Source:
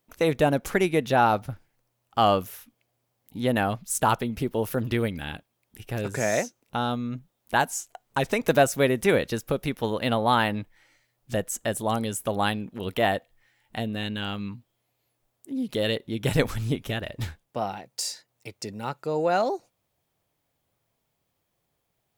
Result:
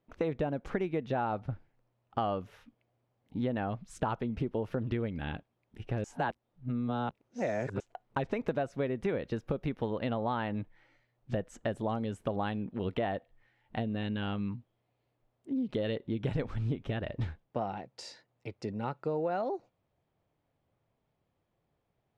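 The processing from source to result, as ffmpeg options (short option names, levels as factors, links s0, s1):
-filter_complex "[0:a]asplit=3[s0][s1][s2];[s0]atrim=end=6.042[s3];[s1]atrim=start=6.038:end=7.802,asetpts=PTS-STARTPTS,areverse[s4];[s2]atrim=start=7.798[s5];[s3][s4]acrossfade=d=0.004:c1=hsin:c2=hsin[s6];[s6][s5]acrossfade=d=0.004:c1=hsin:c2=hsin,lowpass=3400,tiltshelf=f=1200:g=4,acompressor=threshold=0.0501:ratio=6,volume=0.708"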